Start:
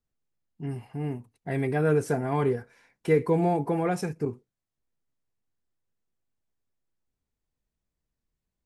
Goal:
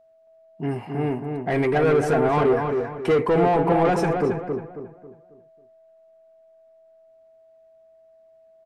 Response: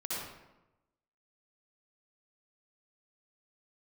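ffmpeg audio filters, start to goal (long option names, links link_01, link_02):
-filter_complex "[0:a]asplit=2[link_01][link_02];[link_02]highpass=frequency=720:poles=1,volume=24dB,asoftclip=type=tanh:threshold=-11dB[link_03];[link_01][link_03]amix=inputs=2:normalize=0,lowpass=frequency=1200:poles=1,volume=-6dB,aeval=exprs='val(0)+0.002*sin(2*PI*650*n/s)':channel_layout=same,asplit=2[link_04][link_05];[link_05]adelay=272,lowpass=frequency=1900:poles=1,volume=-4.5dB,asplit=2[link_06][link_07];[link_07]adelay=272,lowpass=frequency=1900:poles=1,volume=0.38,asplit=2[link_08][link_09];[link_09]adelay=272,lowpass=frequency=1900:poles=1,volume=0.38,asplit=2[link_10][link_11];[link_11]adelay=272,lowpass=frequency=1900:poles=1,volume=0.38,asplit=2[link_12][link_13];[link_13]adelay=272,lowpass=frequency=1900:poles=1,volume=0.38[link_14];[link_04][link_06][link_08][link_10][link_12][link_14]amix=inputs=6:normalize=0"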